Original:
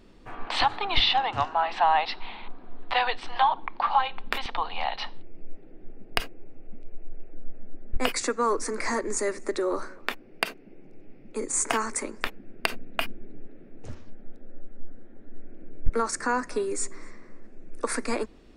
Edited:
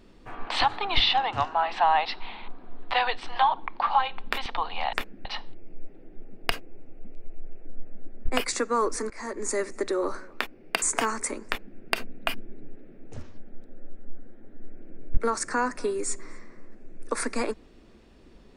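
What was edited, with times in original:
8.78–9.22 fade in, from -21.5 dB
10.5–11.54 cut
12.19–12.51 copy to 4.93

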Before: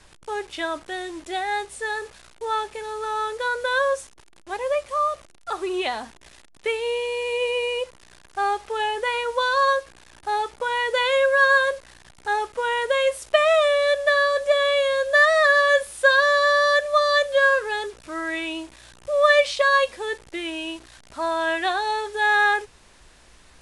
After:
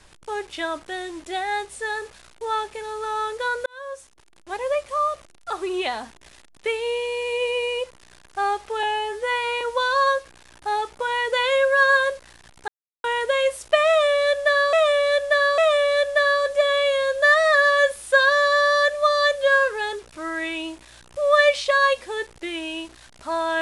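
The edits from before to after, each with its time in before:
3.66–4.56 fade in
8.83–9.22 stretch 2×
12.29–12.65 mute
13.49–14.34 loop, 3 plays

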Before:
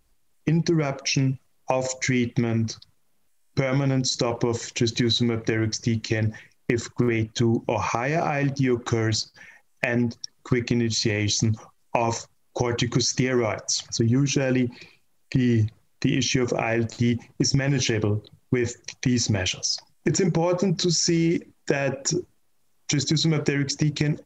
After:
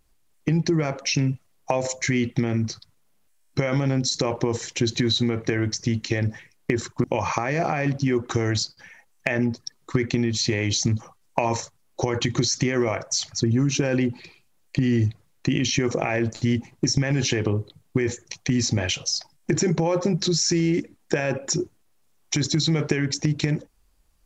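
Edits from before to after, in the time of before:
7.04–7.61 cut

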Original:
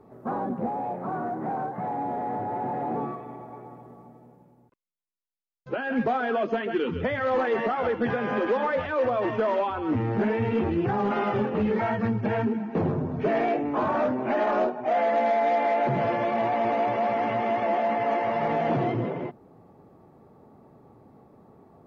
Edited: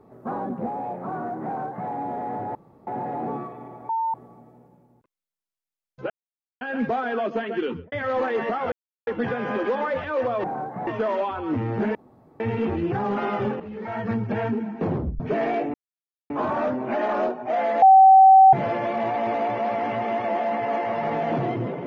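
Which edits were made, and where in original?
1.46–1.89 copy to 9.26
2.55 insert room tone 0.32 s
3.57–3.82 bleep 902 Hz -21.5 dBFS
5.78 insert silence 0.51 s
6.83–7.09 studio fade out
7.89 insert silence 0.35 s
10.34 insert room tone 0.45 s
11.54–12.01 fade in quadratic, from -13.5 dB
12.89 tape stop 0.25 s
13.68 insert silence 0.56 s
15.2–15.91 bleep 767 Hz -8 dBFS

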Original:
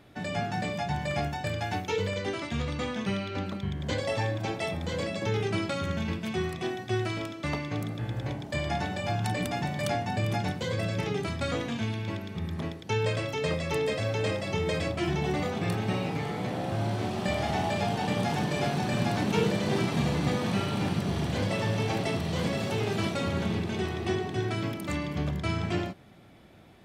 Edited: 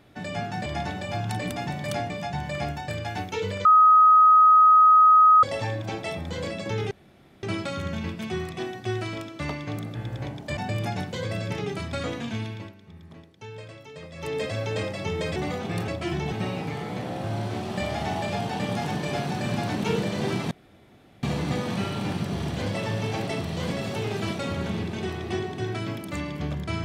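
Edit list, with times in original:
2.21–3.99 bleep 1260 Hz -11.5 dBFS
5.47 insert room tone 0.52 s
8.61–10.05 move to 0.66
11.93–13.88 dip -13 dB, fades 0.30 s
14.84–15.28 move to 15.8
19.99 insert room tone 0.72 s

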